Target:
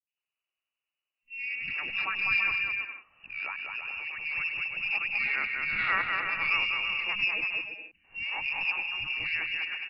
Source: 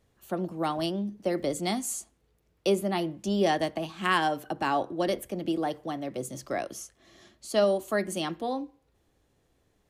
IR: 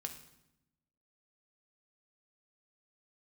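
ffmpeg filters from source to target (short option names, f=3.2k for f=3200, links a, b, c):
-filter_complex "[0:a]areverse,agate=range=-19dB:threshold=-55dB:ratio=16:detection=peak,lowshelf=f=190:g=-6.5,lowpass=f=2.6k:t=q:w=0.5098,lowpass=f=2.6k:t=q:w=0.6013,lowpass=f=2.6k:t=q:w=0.9,lowpass=f=2.6k:t=q:w=2.563,afreqshift=-3000,aecho=1:1:200|330|414.5|469.4|505.1:0.631|0.398|0.251|0.158|0.1,aeval=exprs='0.335*(cos(1*acos(clip(val(0)/0.335,-1,1)))-cos(1*PI/2))+0.0299*(cos(2*acos(clip(val(0)/0.335,-1,1)))-cos(2*PI/2))':c=same,acrossover=split=240|2200[a][b][c];[c]adelay=70[d];[b]adelay=170[e];[a][e][d]amix=inputs=3:normalize=0"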